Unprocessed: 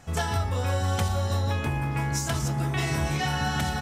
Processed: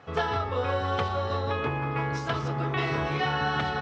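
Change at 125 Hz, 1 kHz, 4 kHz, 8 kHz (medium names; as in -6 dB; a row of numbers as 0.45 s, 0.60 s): -5.0 dB, +2.5 dB, -2.0 dB, -18.0 dB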